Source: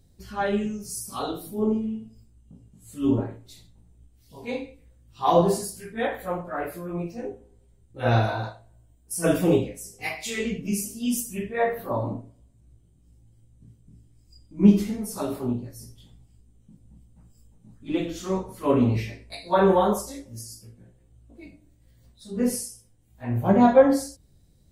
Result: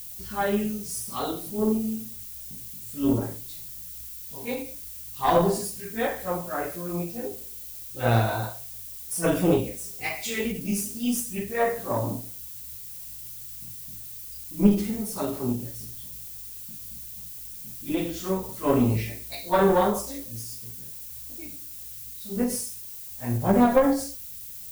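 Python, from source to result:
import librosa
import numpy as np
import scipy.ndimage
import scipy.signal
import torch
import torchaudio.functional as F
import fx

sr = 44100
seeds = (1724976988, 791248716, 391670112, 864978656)

y = fx.diode_clip(x, sr, knee_db=-16.5)
y = fx.dmg_noise_colour(y, sr, seeds[0], colour='violet', level_db=-41.0)
y = fx.end_taper(y, sr, db_per_s=120.0)
y = y * librosa.db_to_amplitude(1.0)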